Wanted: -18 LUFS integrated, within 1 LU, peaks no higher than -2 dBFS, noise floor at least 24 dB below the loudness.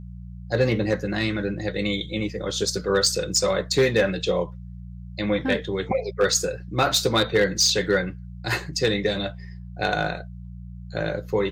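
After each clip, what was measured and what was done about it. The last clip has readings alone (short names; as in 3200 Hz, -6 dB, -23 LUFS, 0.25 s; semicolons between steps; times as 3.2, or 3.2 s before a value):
clipped 0.3%; flat tops at -12.0 dBFS; hum 60 Hz; harmonics up to 180 Hz; hum level -35 dBFS; loudness -23.5 LUFS; peak -12.0 dBFS; loudness target -18.0 LUFS
-> clip repair -12 dBFS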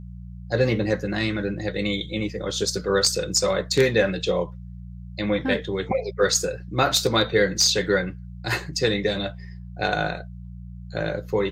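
clipped 0.0%; hum 60 Hz; harmonics up to 180 Hz; hum level -35 dBFS
-> de-hum 60 Hz, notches 3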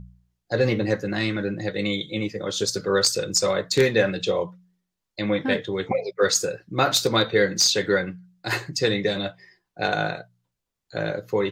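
hum none; loudness -23.5 LUFS; peak -3.5 dBFS; loudness target -18.0 LUFS
-> gain +5.5 dB; limiter -2 dBFS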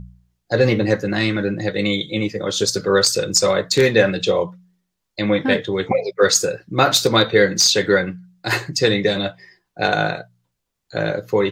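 loudness -18.5 LUFS; peak -2.0 dBFS; noise floor -77 dBFS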